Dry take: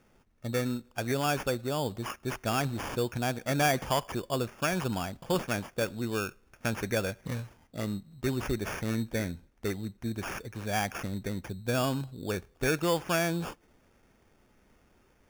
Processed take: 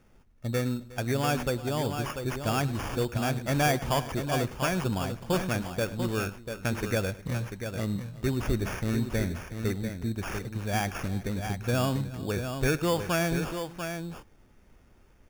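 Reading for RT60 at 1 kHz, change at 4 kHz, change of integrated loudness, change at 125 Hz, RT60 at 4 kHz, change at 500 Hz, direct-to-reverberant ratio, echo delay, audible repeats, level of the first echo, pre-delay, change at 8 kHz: none, +1.0 dB, +2.0 dB, +5.0 dB, none, +1.5 dB, none, 0.103 s, 3, -19.0 dB, none, +1.0 dB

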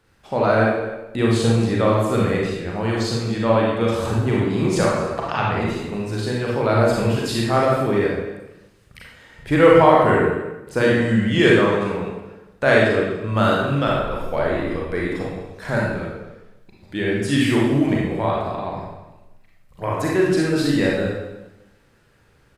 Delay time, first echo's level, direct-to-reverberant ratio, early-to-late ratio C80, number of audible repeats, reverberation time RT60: 0.246 s, -15.5 dB, -4.5 dB, 3.0 dB, 1, 1.0 s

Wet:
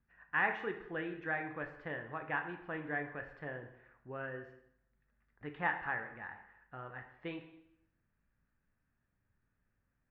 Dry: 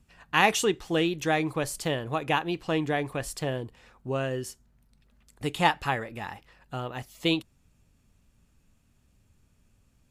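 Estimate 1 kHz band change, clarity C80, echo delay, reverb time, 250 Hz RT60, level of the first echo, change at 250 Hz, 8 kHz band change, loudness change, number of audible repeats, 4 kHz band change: -12.0 dB, 11.5 dB, none, 0.75 s, 0.80 s, none, -15.0 dB, under -40 dB, -11.0 dB, none, -25.0 dB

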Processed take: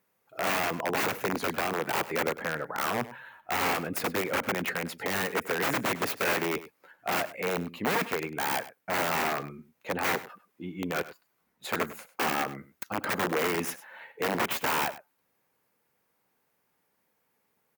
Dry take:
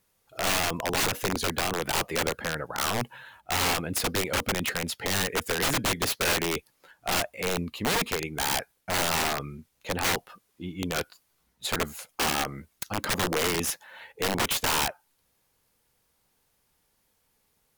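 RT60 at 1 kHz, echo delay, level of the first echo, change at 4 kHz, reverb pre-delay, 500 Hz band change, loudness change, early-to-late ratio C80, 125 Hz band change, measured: none, 0.1 s, -16.0 dB, -7.5 dB, none, 0.0 dB, -2.0 dB, none, -5.5 dB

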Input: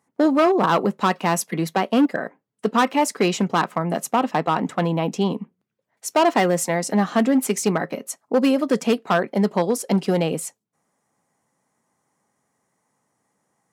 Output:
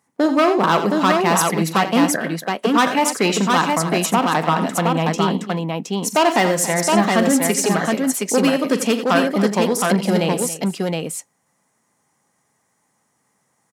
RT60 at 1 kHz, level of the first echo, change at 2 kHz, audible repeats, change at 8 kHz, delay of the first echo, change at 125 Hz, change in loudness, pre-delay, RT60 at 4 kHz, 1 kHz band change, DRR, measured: none, -13.5 dB, +6.0 dB, 4, +7.5 dB, 43 ms, +3.5 dB, +3.0 dB, none, none, +4.0 dB, none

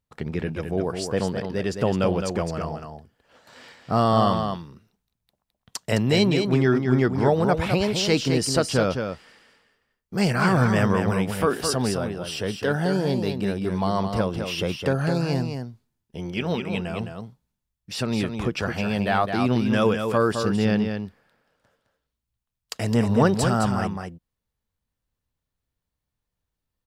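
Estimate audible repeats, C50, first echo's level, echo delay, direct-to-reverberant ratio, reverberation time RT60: 1, none, -6.5 dB, 0.212 s, none, none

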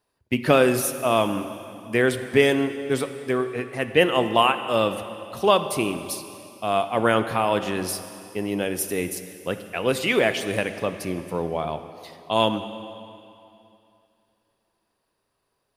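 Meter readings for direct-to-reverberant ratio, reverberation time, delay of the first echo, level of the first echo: 9.5 dB, 2.7 s, none, none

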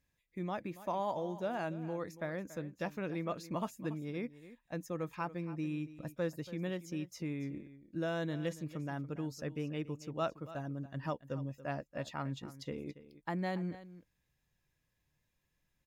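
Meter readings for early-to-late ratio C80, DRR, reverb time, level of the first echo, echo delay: none, none, none, -15.5 dB, 0.282 s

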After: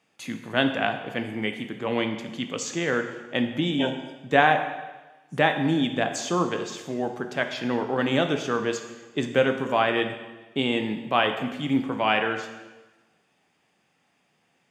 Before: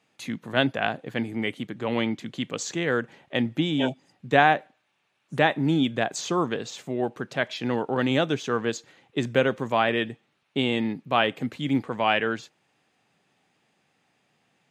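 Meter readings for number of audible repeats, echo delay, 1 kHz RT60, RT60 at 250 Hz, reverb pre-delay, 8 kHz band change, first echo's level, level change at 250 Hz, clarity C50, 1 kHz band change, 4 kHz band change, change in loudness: none, none, 1.2 s, 1.2 s, 5 ms, +1.0 dB, none, 0.0 dB, 8.5 dB, +0.5 dB, +0.5 dB, +0.5 dB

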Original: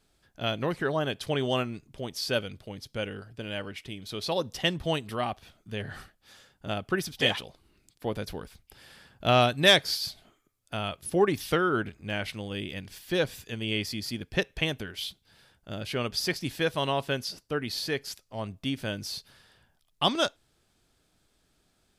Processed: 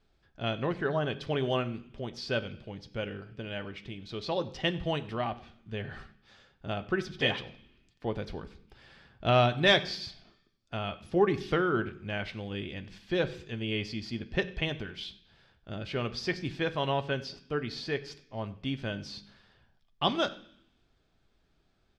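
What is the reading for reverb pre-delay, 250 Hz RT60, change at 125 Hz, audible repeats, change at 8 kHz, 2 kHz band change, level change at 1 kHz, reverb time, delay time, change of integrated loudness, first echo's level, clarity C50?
3 ms, 0.95 s, -0.5 dB, 1, -13.0 dB, -2.5 dB, -2.0 dB, 0.65 s, 95 ms, -2.5 dB, -22.0 dB, 16.0 dB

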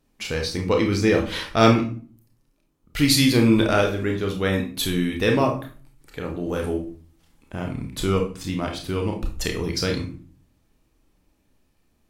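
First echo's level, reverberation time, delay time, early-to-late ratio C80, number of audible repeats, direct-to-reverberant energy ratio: none, 0.40 s, none, 14.0 dB, none, 2.0 dB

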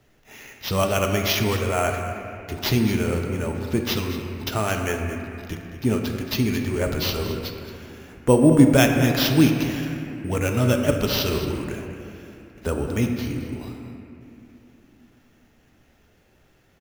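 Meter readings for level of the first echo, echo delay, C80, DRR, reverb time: -12.5 dB, 0.222 s, 4.5 dB, 2.5 dB, 2.8 s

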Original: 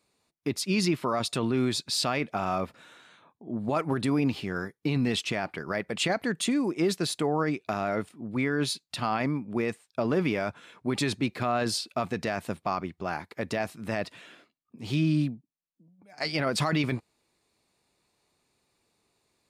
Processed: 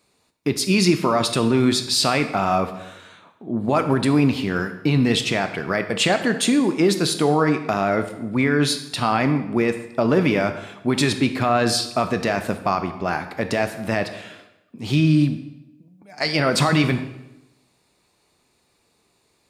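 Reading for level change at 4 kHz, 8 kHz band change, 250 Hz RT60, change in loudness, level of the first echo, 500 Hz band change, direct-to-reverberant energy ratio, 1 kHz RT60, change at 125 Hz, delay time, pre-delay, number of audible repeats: +8.5 dB, +8.5 dB, 1.0 s, +8.5 dB, none, +8.5 dB, 8.0 dB, 0.90 s, +9.0 dB, none, 13 ms, none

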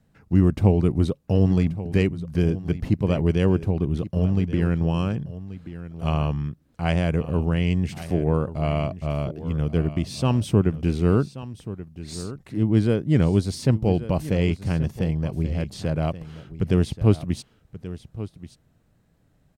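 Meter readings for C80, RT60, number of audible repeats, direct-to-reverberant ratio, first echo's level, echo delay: none, none, 1, none, -14.5 dB, 1.131 s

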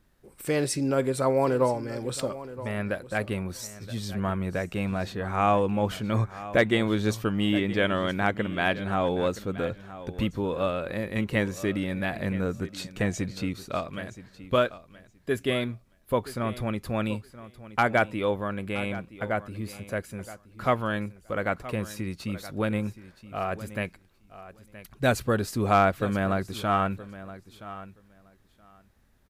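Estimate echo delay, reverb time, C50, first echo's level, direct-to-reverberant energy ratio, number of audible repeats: 0.972 s, none, none, -15.5 dB, none, 2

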